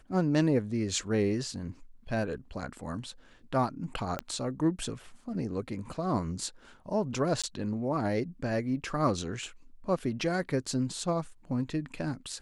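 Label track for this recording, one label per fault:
4.190000	4.190000	click −18 dBFS
7.420000	7.440000	drop-out 16 ms

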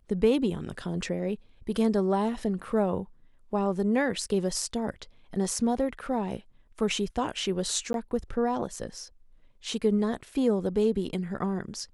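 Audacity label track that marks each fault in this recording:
7.930000	7.940000	drop-out 12 ms

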